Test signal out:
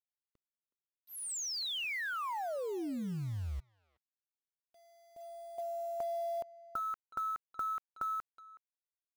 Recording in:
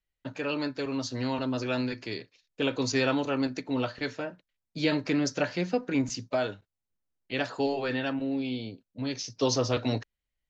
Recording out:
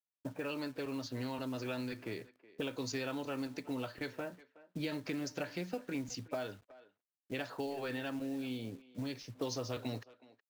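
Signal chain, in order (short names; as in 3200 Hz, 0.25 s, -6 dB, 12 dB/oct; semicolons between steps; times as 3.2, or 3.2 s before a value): low-pass opened by the level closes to 370 Hz, open at -25 dBFS; compressor 4:1, threshold -39 dBFS; companded quantiser 6-bit; speakerphone echo 0.37 s, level -18 dB; gain +1 dB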